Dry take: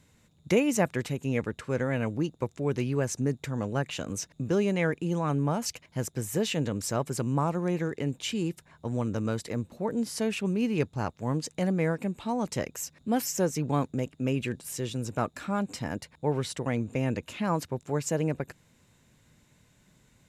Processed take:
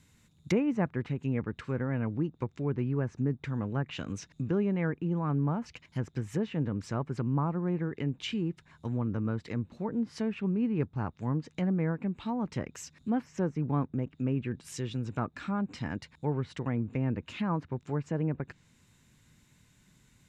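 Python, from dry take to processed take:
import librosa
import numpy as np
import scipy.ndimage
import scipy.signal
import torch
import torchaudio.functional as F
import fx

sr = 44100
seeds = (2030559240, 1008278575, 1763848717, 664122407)

y = fx.env_lowpass_down(x, sr, base_hz=1300.0, full_db=-25.5)
y = fx.peak_eq(y, sr, hz=580.0, db=-8.5, octaves=1.1)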